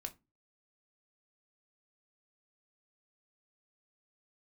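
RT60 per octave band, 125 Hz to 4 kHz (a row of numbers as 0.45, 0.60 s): 0.45, 0.40, 0.25, 0.25, 0.20, 0.15 s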